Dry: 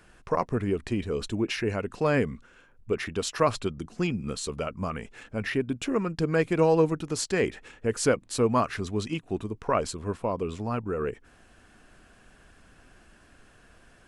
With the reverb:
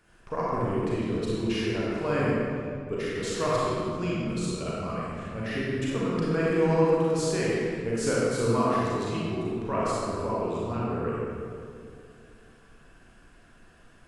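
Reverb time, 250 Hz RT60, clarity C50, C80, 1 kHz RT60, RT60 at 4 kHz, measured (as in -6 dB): 2.4 s, 2.9 s, -4.5 dB, -2.0 dB, 2.2 s, 1.4 s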